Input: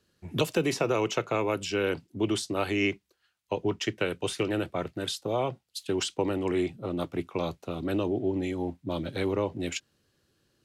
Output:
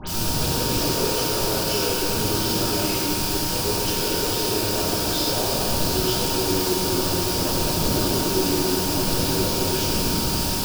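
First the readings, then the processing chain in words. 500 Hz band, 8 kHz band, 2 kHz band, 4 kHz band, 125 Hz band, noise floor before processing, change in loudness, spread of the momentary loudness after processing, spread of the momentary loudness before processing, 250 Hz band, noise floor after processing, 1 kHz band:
+4.0 dB, +17.0 dB, +5.0 dB, +14.0 dB, +9.0 dB, -75 dBFS, +9.0 dB, 1 LU, 7 LU, +5.5 dB, -24 dBFS, +9.0 dB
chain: wind noise 230 Hz -39 dBFS; steep low-pass 6.6 kHz 96 dB/octave; compression, threshold -33 dBFS, peak gain reduction 12.5 dB; hard clipper -32.5 dBFS, distortion -13 dB; word length cut 6-bit, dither triangular; phase dispersion highs, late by 76 ms, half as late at 2.7 kHz; whistle 930 Hz -47 dBFS; graphic EQ with 31 bands 1 kHz -3 dB, 2 kHz -12 dB, 5 kHz +8 dB; simulated room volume 170 m³, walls hard, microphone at 1.3 m; trim +2.5 dB

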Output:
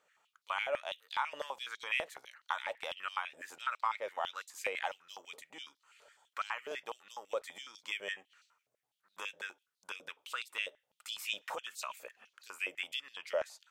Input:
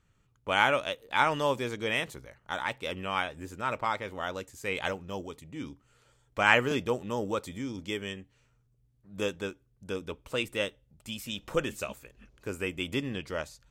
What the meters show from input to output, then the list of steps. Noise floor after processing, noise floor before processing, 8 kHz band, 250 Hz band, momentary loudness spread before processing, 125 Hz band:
under -85 dBFS, -69 dBFS, -4.5 dB, -26.5 dB, 16 LU, under -30 dB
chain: compression 8:1, threshold -37 dBFS, peak gain reduction 20.5 dB; step-sequenced high-pass 12 Hz 590–4100 Hz

